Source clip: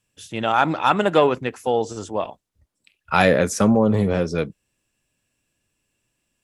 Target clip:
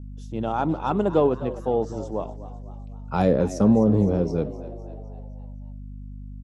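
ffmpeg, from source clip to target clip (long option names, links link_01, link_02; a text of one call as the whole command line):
ffmpeg -i in.wav -filter_complex "[0:a]equalizer=frequency=610:width_type=o:width=0.7:gain=-5,asplit=6[link_01][link_02][link_03][link_04][link_05][link_06];[link_02]adelay=256,afreqshift=86,volume=-15.5dB[link_07];[link_03]adelay=512,afreqshift=172,volume=-20.7dB[link_08];[link_04]adelay=768,afreqshift=258,volume=-25.9dB[link_09];[link_05]adelay=1024,afreqshift=344,volume=-31.1dB[link_10];[link_06]adelay=1280,afreqshift=430,volume=-36.3dB[link_11];[link_01][link_07][link_08][link_09][link_10][link_11]amix=inputs=6:normalize=0,aeval=exprs='val(0)+0.0158*(sin(2*PI*50*n/s)+sin(2*PI*2*50*n/s)/2+sin(2*PI*3*50*n/s)/3+sin(2*PI*4*50*n/s)/4+sin(2*PI*5*50*n/s)/5)':channel_layout=same,firequalizer=gain_entry='entry(560,0);entry(1800,-20);entry(5600,-10);entry(9000,-19)':delay=0.05:min_phase=1" out.wav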